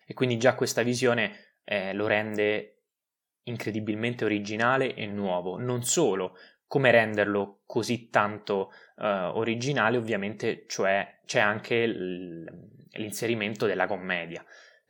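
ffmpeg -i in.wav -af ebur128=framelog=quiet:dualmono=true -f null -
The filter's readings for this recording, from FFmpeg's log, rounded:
Integrated loudness:
  I:         -24.3 LUFS
  Threshold: -34.8 LUFS
Loudness range:
  LRA:         3.8 LU
  Threshold: -44.9 LUFS
  LRA low:   -26.9 LUFS
  LRA high:  -23.1 LUFS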